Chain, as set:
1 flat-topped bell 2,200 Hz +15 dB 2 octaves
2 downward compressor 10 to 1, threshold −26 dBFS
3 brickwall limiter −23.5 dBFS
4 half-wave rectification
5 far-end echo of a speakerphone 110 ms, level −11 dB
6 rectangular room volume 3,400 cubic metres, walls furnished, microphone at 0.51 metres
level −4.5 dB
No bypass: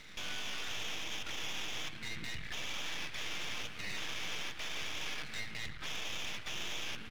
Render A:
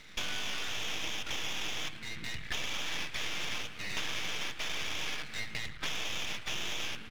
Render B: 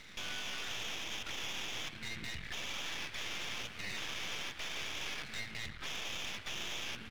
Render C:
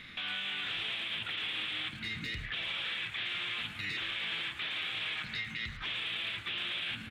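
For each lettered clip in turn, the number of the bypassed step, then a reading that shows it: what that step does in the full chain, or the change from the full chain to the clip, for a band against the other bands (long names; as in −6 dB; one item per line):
3, average gain reduction 3.0 dB
6, echo-to-direct ratio −12.5 dB to −16.5 dB
4, 8 kHz band −16.5 dB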